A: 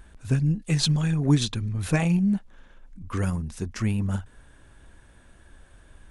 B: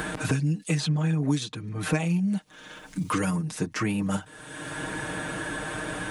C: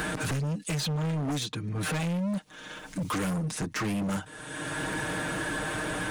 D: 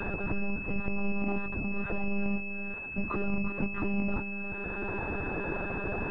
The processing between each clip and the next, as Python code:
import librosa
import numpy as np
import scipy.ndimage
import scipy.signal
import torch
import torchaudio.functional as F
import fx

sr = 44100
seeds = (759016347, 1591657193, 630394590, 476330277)

y1 = scipy.signal.sosfilt(scipy.signal.butter(2, 190.0, 'highpass', fs=sr, output='sos'), x)
y1 = y1 + 0.92 * np.pad(y1, (int(6.5 * sr / 1000.0), 0))[:len(y1)]
y1 = fx.band_squash(y1, sr, depth_pct=100)
y1 = y1 * librosa.db_to_amplitude(-1.5)
y2 = np.clip(y1, -10.0 ** (-29.5 / 20.0), 10.0 ** (-29.5 / 20.0))
y2 = y2 * librosa.db_to_amplitude(2.0)
y3 = y2 + 10.0 ** (-8.5 / 20.0) * np.pad(y2, (int(354 * sr / 1000.0), 0))[:len(y2)]
y3 = fx.lpc_monotone(y3, sr, seeds[0], pitch_hz=200.0, order=16)
y3 = fx.pwm(y3, sr, carrier_hz=2600.0)